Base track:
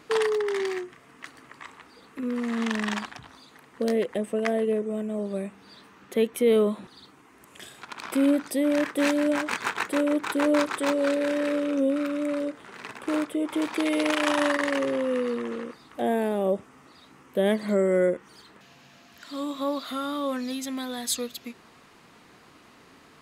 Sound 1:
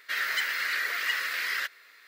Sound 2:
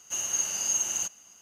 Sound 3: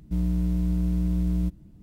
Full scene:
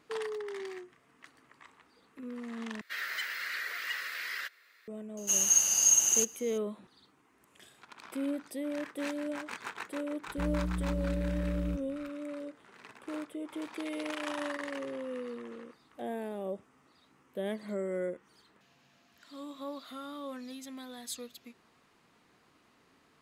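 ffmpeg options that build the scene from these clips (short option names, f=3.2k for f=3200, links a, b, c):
-filter_complex "[0:a]volume=-12.5dB[a];[2:a]highshelf=f=5.4k:g=10[b];[a]asplit=2[c][d];[c]atrim=end=2.814[e];[1:a]atrim=end=2.07,asetpts=PTS-STARTPTS,volume=-7.5dB[f];[d]atrim=start=4.876[g];[b]atrim=end=1.41,asetpts=PTS-STARTPTS,volume=-2dB,afade=t=in:d=0.004:c=hsin,afade=t=out:st=1.406:d=0.004:c=hsin,adelay=227997S[h];[3:a]atrim=end=1.82,asetpts=PTS-STARTPTS,volume=-9dB,afade=t=in:d=0.004:c=hsin,afade=t=out:st=1.816:d=0.004:c=hsin,adelay=10270[i];[e][f]acrossfade=d=0.004:c1=hsin:c2=hsin[j];[j][g]acrossfade=d=0.004:c1=hsin:c2=hsin[k];[k][h][i]amix=inputs=3:normalize=0"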